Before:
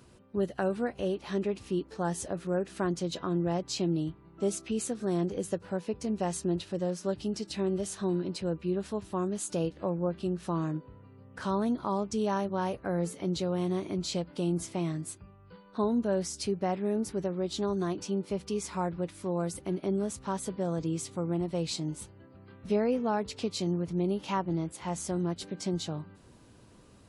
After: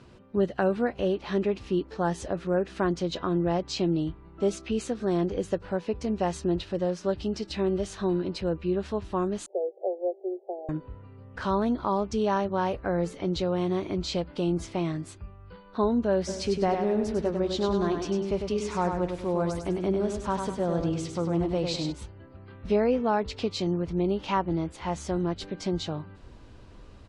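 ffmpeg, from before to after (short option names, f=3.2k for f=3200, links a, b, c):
-filter_complex "[0:a]asettb=1/sr,asplit=3[a][b][c];[a]atrim=end=9.464[d];[b]atrim=start=9.46:end=10.69,asetpts=PTS-STARTPTS,afade=t=in:d=0.004:c=qsin,afade=t=out:st=1.226:d=0.004:c=qsin,asuperpass=centerf=540:order=20:qfactor=1.2[e];[c]atrim=start=10.686[f];[d][e]acrossfade=d=0.004:c1=hsin:c2=qsin[g];[g][f]acrossfade=d=0.004:c1=qsin:c2=hsin,asplit=3[h][i][j];[h]afade=t=out:st=16.27:d=0.02[k];[i]aecho=1:1:100|200|300|400|500:0.531|0.212|0.0849|0.034|0.0136,afade=t=in:st=16.27:d=0.02,afade=t=out:st=21.91:d=0.02[l];[j]afade=t=in:st=21.91:d=0.02[m];[k][l][m]amix=inputs=3:normalize=0,lowpass=4.5k,acontrast=30,asubboost=boost=6:cutoff=58"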